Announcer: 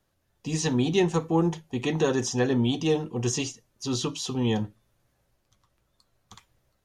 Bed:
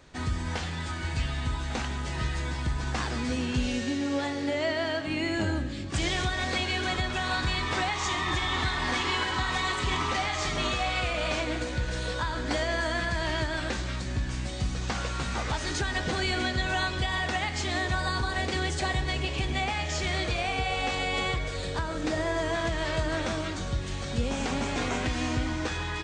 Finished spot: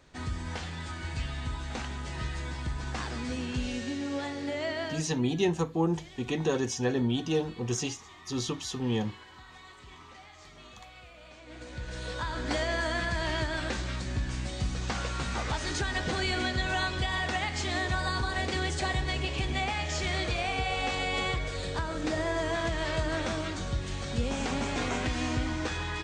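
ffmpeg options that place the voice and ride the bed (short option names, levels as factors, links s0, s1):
-filter_complex "[0:a]adelay=4450,volume=0.631[s0];[1:a]volume=6.31,afade=t=out:st=4.84:d=0.26:silence=0.133352,afade=t=in:st=11.41:d=1.09:silence=0.0944061[s1];[s0][s1]amix=inputs=2:normalize=0"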